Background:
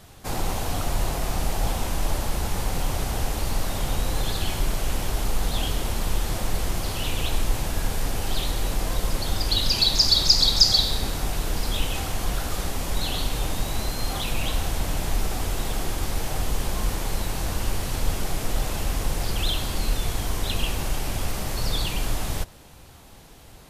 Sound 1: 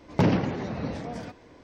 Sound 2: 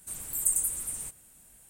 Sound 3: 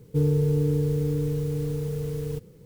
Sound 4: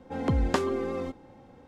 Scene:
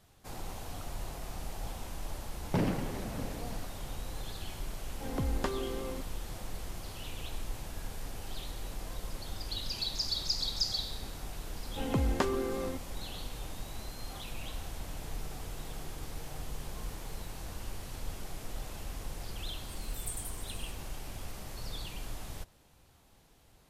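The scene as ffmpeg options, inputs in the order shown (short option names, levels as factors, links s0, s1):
-filter_complex "[4:a]asplit=2[s0][s1];[0:a]volume=0.178[s2];[3:a]acompressor=threshold=0.0126:ratio=6:attack=3.2:release=140:knee=1:detection=peak[s3];[1:a]atrim=end=1.63,asetpts=PTS-STARTPTS,volume=0.376,afade=t=in:d=0.004:c=hsin,afade=t=out:st=1.626:d=0.004:c=hsin,adelay=2350[s4];[s0]atrim=end=1.67,asetpts=PTS-STARTPTS,volume=0.398,afade=t=in:d=0.004:c=hsin,afade=t=out:st=1.666:d=0.004:c=hsin,adelay=4900[s5];[s1]atrim=end=1.67,asetpts=PTS-STARTPTS,volume=0.631,afade=t=in:d=0.004:c=hsin,afade=t=out:st=1.666:d=0.004:c=hsin,adelay=11660[s6];[s3]atrim=end=2.65,asetpts=PTS-STARTPTS,volume=0.168,afade=t=in:d=0.004:c=hsin,afade=t=out:st=2.646:d=0.004:c=hsin,adelay=14880[s7];[2:a]atrim=end=1.69,asetpts=PTS-STARTPTS,volume=0.178,afade=t=in:d=0.004:c=hsin,afade=t=out:st=1.686:d=0.004:c=hsin,adelay=19610[s8];[s2][s4][s5][s6][s7][s8]amix=inputs=6:normalize=0"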